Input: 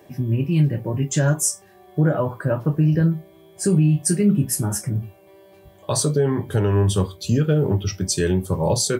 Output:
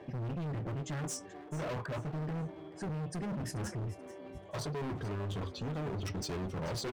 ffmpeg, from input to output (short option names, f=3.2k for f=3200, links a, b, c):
-filter_complex "[0:a]lowpass=3.1k,areverse,acompressor=threshold=-25dB:ratio=6,areverse,atempo=1.3,asoftclip=type=hard:threshold=-35.5dB,asplit=4[a][b][c][d];[b]adelay=434,afreqshift=150,volume=-16dB[e];[c]adelay=868,afreqshift=300,volume=-25.9dB[f];[d]adelay=1302,afreqshift=450,volume=-35.8dB[g];[a][e][f][g]amix=inputs=4:normalize=0"